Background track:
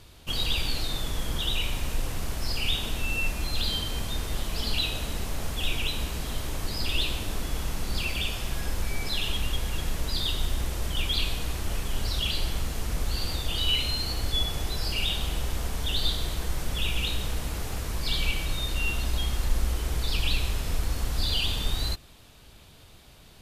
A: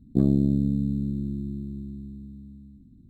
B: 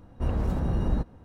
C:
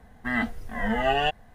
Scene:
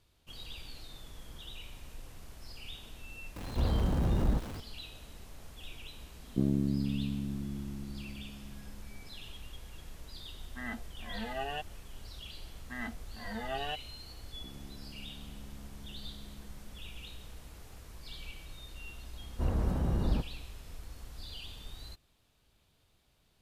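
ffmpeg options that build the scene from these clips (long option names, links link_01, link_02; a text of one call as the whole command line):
ffmpeg -i bed.wav -i cue0.wav -i cue1.wav -i cue2.wav -filter_complex "[2:a]asplit=2[link_01][link_02];[1:a]asplit=2[link_03][link_04];[3:a]asplit=2[link_05][link_06];[0:a]volume=-18.5dB[link_07];[link_01]aeval=exprs='val(0)+0.5*0.02*sgn(val(0))':channel_layout=same[link_08];[link_06]aeval=exprs='if(lt(val(0),0),0.708*val(0),val(0))':channel_layout=same[link_09];[link_04]acompressor=threshold=-33dB:ratio=6:attack=3.2:release=140:knee=1:detection=peak[link_10];[link_08]atrim=end=1.24,asetpts=PTS-STARTPTS,volume=-3.5dB,afade=type=in:duration=0.004:curve=hsin,afade=type=out:start_time=1.236:duration=0.004:curve=hsin,adelay=3360[link_11];[link_03]atrim=end=3.09,asetpts=PTS-STARTPTS,volume=-8.5dB,afade=type=in:duration=0.004:curve=hsin,afade=type=out:start_time=3.086:duration=0.004:curve=hsin,adelay=6210[link_12];[link_05]atrim=end=1.54,asetpts=PTS-STARTPTS,volume=-14dB,afade=type=in:duration=0.004:curve=hsin,afade=type=out:start_time=1.536:duration=0.004:curve=hsin,adelay=10310[link_13];[link_09]atrim=end=1.54,asetpts=PTS-STARTPTS,volume=-12.5dB,afade=type=in:duration=0.004:curve=hsin,afade=type=out:start_time=1.536:duration=0.004:curve=hsin,adelay=12450[link_14];[link_10]atrim=end=3.09,asetpts=PTS-STARTPTS,volume=-15dB,afade=type=in:duration=0.004:curve=hsin,afade=type=out:start_time=3.086:duration=0.004:curve=hsin,adelay=14290[link_15];[link_02]atrim=end=1.24,asetpts=PTS-STARTPTS,volume=-4dB,afade=type=in:duration=0.004:curve=hsin,afade=type=out:start_time=1.236:duration=0.004:curve=hsin,adelay=19190[link_16];[link_07][link_11][link_12][link_13][link_14][link_15][link_16]amix=inputs=7:normalize=0" out.wav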